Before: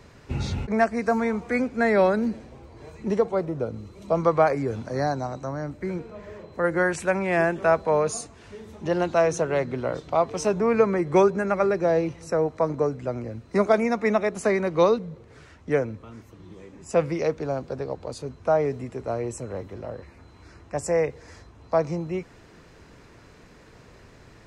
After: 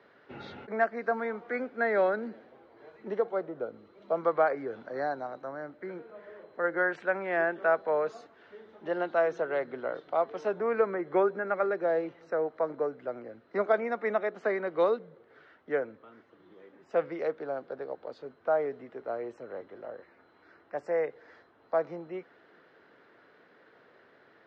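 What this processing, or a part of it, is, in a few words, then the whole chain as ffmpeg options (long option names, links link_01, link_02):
phone earpiece: -filter_complex "[0:a]highpass=390,equalizer=frequency=1000:width_type=q:width=4:gain=-5,equalizer=frequency=1500:width_type=q:width=4:gain=4,equalizer=frequency=2500:width_type=q:width=4:gain=-9,lowpass=frequency=3300:width=0.5412,lowpass=frequency=3300:width=1.3066,asettb=1/sr,asplit=3[link_01][link_02][link_03];[link_01]atrim=end=10.904[link_04];[link_02]atrim=start=10.9:end=11.51,asetpts=PTS-STARTPTS,afade=type=in:duration=0.004:curve=qsin,afade=type=out:start_time=0.606:duration=0.004:curve=qsin,acrossover=split=2800[link_05][link_06];[link_06]acompressor=threshold=-58dB:ratio=4:attack=1:release=60[link_07];[link_05][link_07]amix=inputs=2:normalize=0[link_08];[link_03]atrim=start=11.506[link_09];[link_04][link_08]acrossfade=duration=0.004:curve1=hsin:curve2=qsin[link_10];[link_10][link_09]acrossfade=duration=0.004:curve1=qsin:curve2=hsin,volume=-4.5dB"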